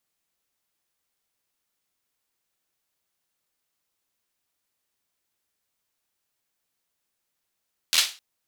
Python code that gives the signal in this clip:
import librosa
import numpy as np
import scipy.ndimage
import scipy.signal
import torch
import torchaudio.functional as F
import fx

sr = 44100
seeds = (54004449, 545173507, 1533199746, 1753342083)

y = fx.drum_clap(sr, seeds[0], length_s=0.26, bursts=5, spacing_ms=12, hz=3700.0, decay_s=0.31)